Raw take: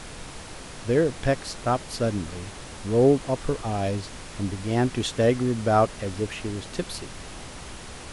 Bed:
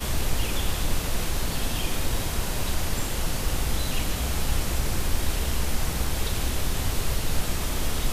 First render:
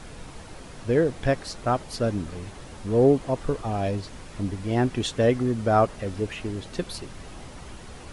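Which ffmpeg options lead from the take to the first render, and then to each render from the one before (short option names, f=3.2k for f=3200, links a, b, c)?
-af "afftdn=nr=7:nf=-41"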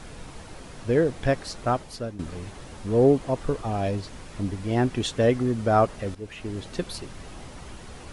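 -filter_complex "[0:a]asplit=3[a][b][c];[a]atrim=end=2.19,asetpts=PTS-STARTPTS,afade=t=out:st=1.69:d=0.5:silence=0.188365[d];[b]atrim=start=2.19:end=6.15,asetpts=PTS-STARTPTS,afade=t=in:d=0.004:c=hsin:silence=0.188365,afade=t=out:st=3.956:d=0.004:c=hsin:silence=0.199526[e];[c]atrim=start=6.15,asetpts=PTS-STARTPTS,afade=t=in:d=0.44:silence=0.199526[f];[d][e][f]concat=n=3:v=0:a=1"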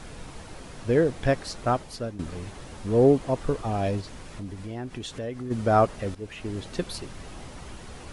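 -filter_complex "[0:a]asplit=3[a][b][c];[a]afade=t=out:st=4.01:d=0.02[d];[b]acompressor=threshold=-36dB:ratio=2.5:attack=3.2:release=140:knee=1:detection=peak,afade=t=in:st=4.01:d=0.02,afade=t=out:st=5.5:d=0.02[e];[c]afade=t=in:st=5.5:d=0.02[f];[d][e][f]amix=inputs=3:normalize=0"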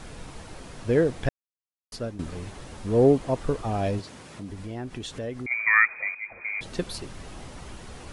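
-filter_complex "[0:a]asettb=1/sr,asplit=3[a][b][c];[a]atrim=end=3.994[d];[b]atrim=start=3.99:end=4.5,asetpts=PTS-STARTPTS,afade=t=in:d=0.004:c=qsin,afade=t=out:st=0.506:d=0.004:c=qsin,highpass=120[e];[c]atrim=start=4.496[f];[d][e]acrossfade=d=0.004:c1=hsin:c2=qsin[g];[g][f]acrossfade=d=0.004:c1=qsin:c2=hsin,asettb=1/sr,asplit=3[h][i][j];[h]atrim=end=5.464[k];[i]atrim=start=5.46:end=6.61,asetpts=PTS-STARTPTS,afade=t=in:d=0.004:c=qsin,afade=t=out:st=1.146:d=0.004:c=qsin,lowpass=f=2.1k:t=q:w=0.5098,lowpass=f=2.1k:t=q:w=0.6013,lowpass=f=2.1k:t=q:w=0.9,lowpass=f=2.1k:t=q:w=2.563,afreqshift=-2500[l];[j]atrim=start=6.606[m];[k][l]acrossfade=d=0.004:c1=hsin:c2=qsin[n];[n][m]acrossfade=d=0.004:c1=qsin:c2=hsin,asplit=3[o][p][q];[o]atrim=end=1.29,asetpts=PTS-STARTPTS,afade=t=out:st=1.286:d=0.004:c=hsin[r];[p]atrim=start=1.29:end=1.92,asetpts=PTS-STARTPTS,volume=0[s];[q]atrim=start=1.92,asetpts=PTS-STARTPTS,afade=t=in:d=0.004:c=hsin[t];[r][s][t]concat=n=3:v=0:a=1"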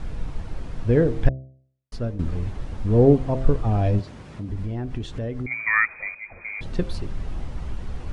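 -af "aemphasis=mode=reproduction:type=bsi,bandreject=f=65.71:t=h:w=4,bandreject=f=131.42:t=h:w=4,bandreject=f=197.13:t=h:w=4,bandreject=f=262.84:t=h:w=4,bandreject=f=328.55:t=h:w=4,bandreject=f=394.26:t=h:w=4,bandreject=f=459.97:t=h:w=4,bandreject=f=525.68:t=h:w=4,bandreject=f=591.39:t=h:w=4,bandreject=f=657.1:t=h:w=4,bandreject=f=722.81:t=h:w=4"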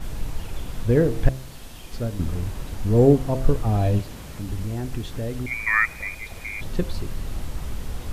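-filter_complex "[1:a]volume=-13.5dB[a];[0:a][a]amix=inputs=2:normalize=0"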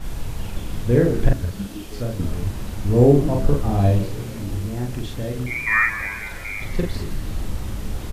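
-filter_complex "[0:a]asplit=2[a][b];[b]adelay=41,volume=-2dB[c];[a][c]amix=inputs=2:normalize=0,asplit=2[d][e];[e]asplit=6[f][g][h][i][j][k];[f]adelay=165,afreqshift=-110,volume=-12dB[l];[g]adelay=330,afreqshift=-220,volume=-17dB[m];[h]adelay=495,afreqshift=-330,volume=-22.1dB[n];[i]adelay=660,afreqshift=-440,volume=-27.1dB[o];[j]adelay=825,afreqshift=-550,volume=-32.1dB[p];[k]adelay=990,afreqshift=-660,volume=-37.2dB[q];[l][m][n][o][p][q]amix=inputs=6:normalize=0[r];[d][r]amix=inputs=2:normalize=0"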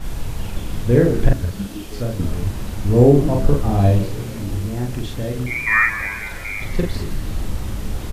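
-af "volume=2.5dB,alimiter=limit=-1dB:level=0:latency=1"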